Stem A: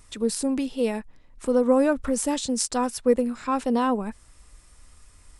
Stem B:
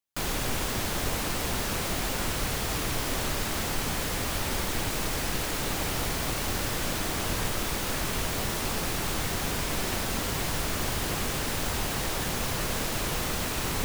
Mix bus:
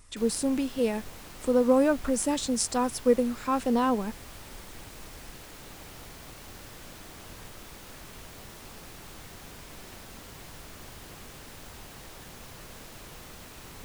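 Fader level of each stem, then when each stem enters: -2.0, -16.0 dB; 0.00, 0.00 s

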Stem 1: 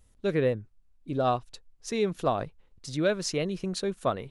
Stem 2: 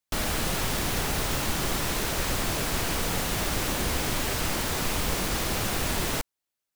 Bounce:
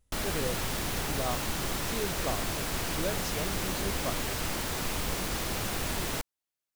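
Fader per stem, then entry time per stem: -9.0, -4.5 dB; 0.00, 0.00 s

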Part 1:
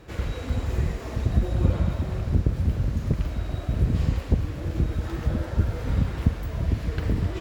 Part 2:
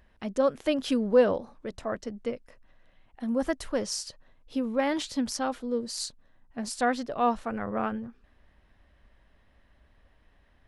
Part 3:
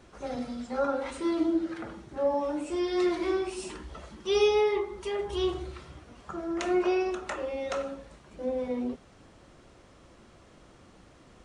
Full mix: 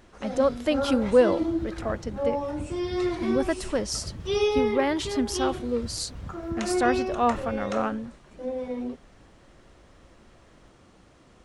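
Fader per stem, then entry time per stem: -16.0, +2.0, -0.5 dB; 0.25, 0.00, 0.00 s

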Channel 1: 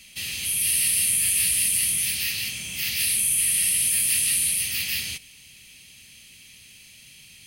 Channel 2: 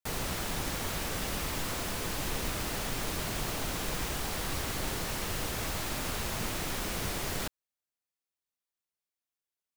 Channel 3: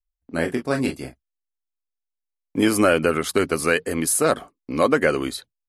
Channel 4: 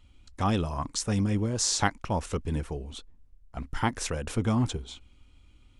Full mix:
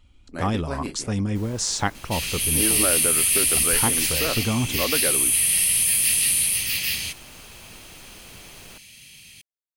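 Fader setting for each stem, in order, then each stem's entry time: +2.0, -12.0, -9.0, +1.5 dB; 1.95, 1.30, 0.00, 0.00 s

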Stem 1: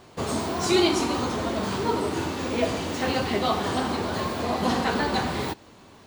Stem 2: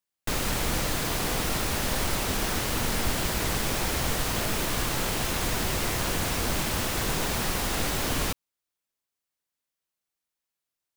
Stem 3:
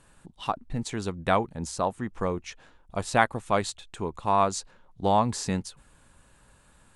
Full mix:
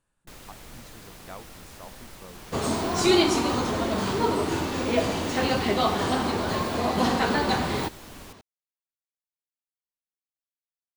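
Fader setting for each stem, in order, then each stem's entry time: +1.0, -18.0, -19.0 dB; 2.35, 0.00, 0.00 s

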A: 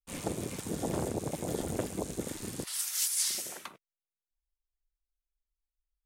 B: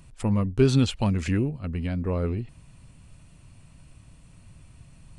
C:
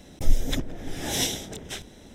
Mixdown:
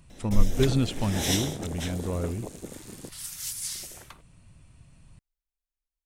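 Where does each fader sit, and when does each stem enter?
-4.0, -4.0, -1.5 dB; 0.45, 0.00, 0.10 s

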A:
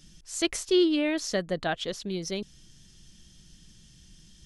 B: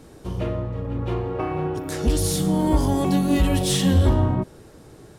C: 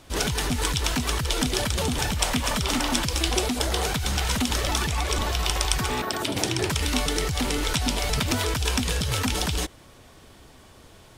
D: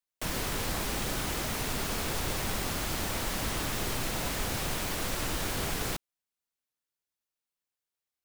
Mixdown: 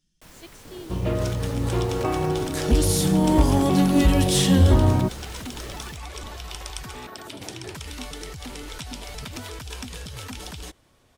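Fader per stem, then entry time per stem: -19.5, +1.5, -11.0, -15.5 dB; 0.00, 0.65, 1.05, 0.00 s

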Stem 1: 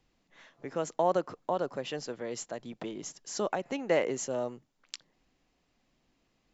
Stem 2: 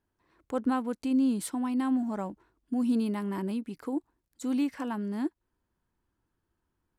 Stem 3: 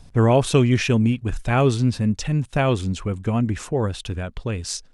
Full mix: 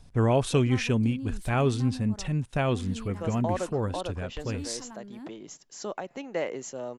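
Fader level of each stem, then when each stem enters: -3.5, -12.0, -6.5 dB; 2.45, 0.00, 0.00 s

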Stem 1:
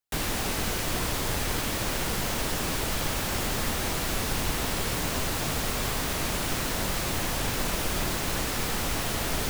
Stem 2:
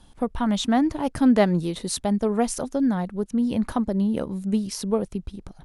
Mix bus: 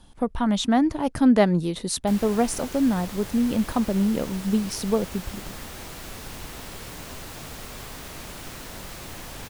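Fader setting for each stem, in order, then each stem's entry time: -9.5, +0.5 dB; 1.95, 0.00 s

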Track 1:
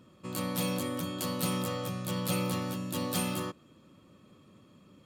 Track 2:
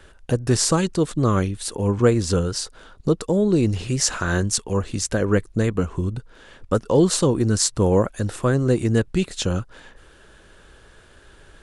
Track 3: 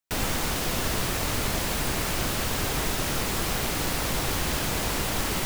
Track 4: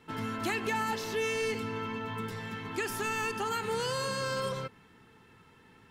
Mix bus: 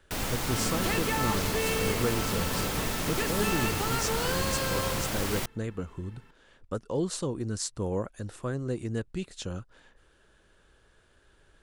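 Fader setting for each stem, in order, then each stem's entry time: -6.0, -13.0, -4.5, 0.0 dB; 0.25, 0.00, 0.00, 0.40 s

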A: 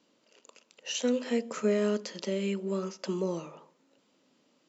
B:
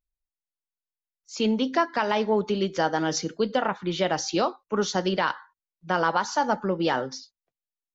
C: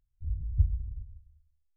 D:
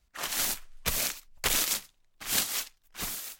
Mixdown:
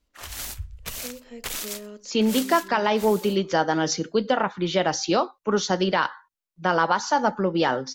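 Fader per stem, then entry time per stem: -12.5, +2.5, -11.0, -5.0 dB; 0.00, 0.75, 0.00, 0.00 s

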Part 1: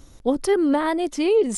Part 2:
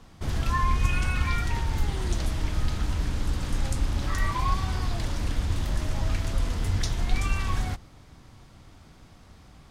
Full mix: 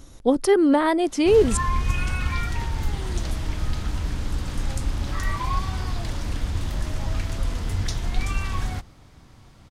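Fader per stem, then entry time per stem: +2.0, +0.5 dB; 0.00, 1.05 s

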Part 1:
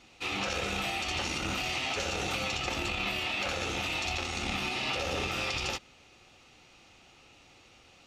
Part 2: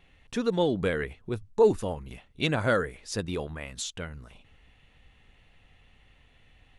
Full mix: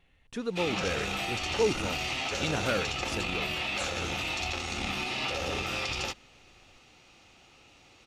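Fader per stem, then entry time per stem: 0.0, -6.0 dB; 0.35, 0.00 s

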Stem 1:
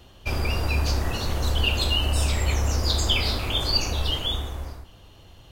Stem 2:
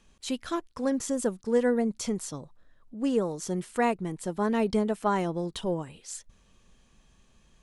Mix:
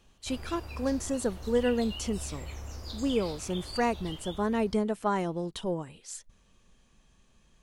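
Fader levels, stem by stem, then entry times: -17.5, -2.0 dB; 0.00, 0.00 s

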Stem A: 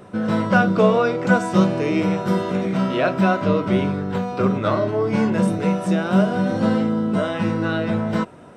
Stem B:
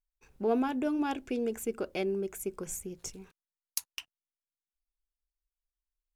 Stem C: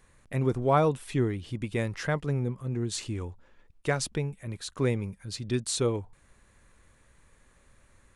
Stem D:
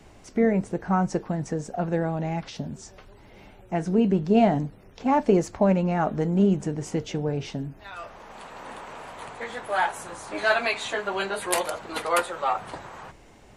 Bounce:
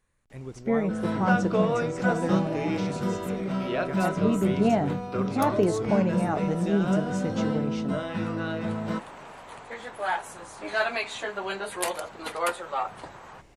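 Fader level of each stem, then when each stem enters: -8.5, -8.0, -13.0, -4.0 dB; 0.75, 1.65, 0.00, 0.30 s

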